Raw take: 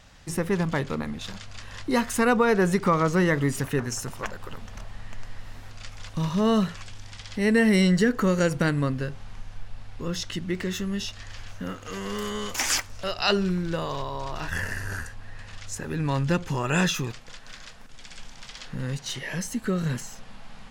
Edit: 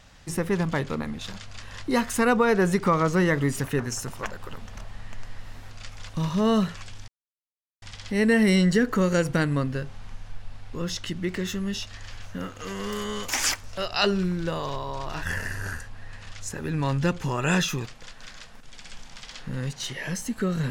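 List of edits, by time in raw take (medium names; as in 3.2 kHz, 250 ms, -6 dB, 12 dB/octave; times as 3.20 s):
7.08 s: insert silence 0.74 s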